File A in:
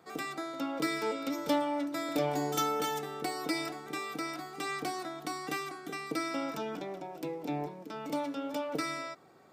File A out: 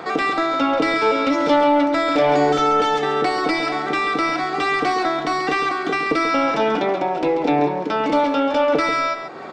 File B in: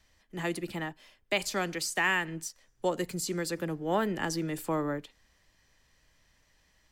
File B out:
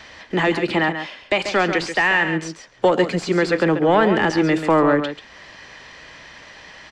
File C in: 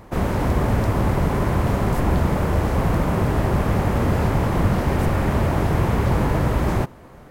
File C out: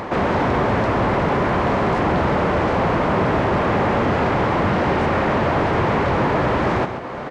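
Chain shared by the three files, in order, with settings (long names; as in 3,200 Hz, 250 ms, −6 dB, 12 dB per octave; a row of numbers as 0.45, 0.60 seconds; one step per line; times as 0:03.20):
high-pass filter 510 Hz 6 dB per octave
high-shelf EQ 2,500 Hz +12 dB
in parallel at +0.5 dB: brickwall limiter −25 dBFS
on the sum: downward compressor 1.5 to 1, threshold −55 dBFS
soft clipping −32 dBFS
head-to-tape spacing loss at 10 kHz 39 dB
on a send: single-tap delay 137 ms −9 dB
on the sum: loudness normalisation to −19 LKFS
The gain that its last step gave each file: +27.0, +27.0, +22.0 decibels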